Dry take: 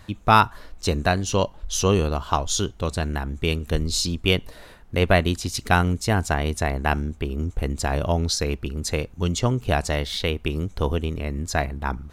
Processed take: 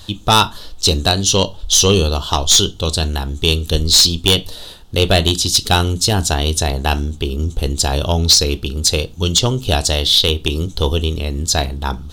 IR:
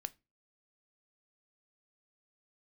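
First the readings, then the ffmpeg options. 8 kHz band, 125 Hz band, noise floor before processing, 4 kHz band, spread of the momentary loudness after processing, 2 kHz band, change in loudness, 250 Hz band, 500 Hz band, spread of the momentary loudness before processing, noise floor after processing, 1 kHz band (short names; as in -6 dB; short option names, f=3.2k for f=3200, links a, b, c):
+14.0 dB, +6.0 dB, -47 dBFS, +15.5 dB, 10 LU, +2.5 dB, +8.5 dB, +4.5 dB, +5.0 dB, 8 LU, -36 dBFS, +3.0 dB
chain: -filter_complex "[0:a]highshelf=f=2.7k:t=q:w=3:g=8[a];[1:a]atrim=start_sample=2205[b];[a][b]afir=irnorm=-1:irlink=0,aeval=exprs='0.944*(cos(1*acos(clip(val(0)/0.944,-1,1)))-cos(1*PI/2))+0.376*(cos(5*acos(clip(val(0)/0.944,-1,1)))-cos(5*PI/2))':c=same,volume=-1dB"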